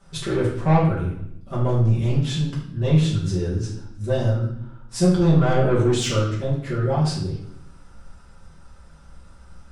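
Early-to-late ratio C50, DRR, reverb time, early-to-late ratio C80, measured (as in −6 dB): 3.5 dB, −8.5 dB, 0.75 s, 7.0 dB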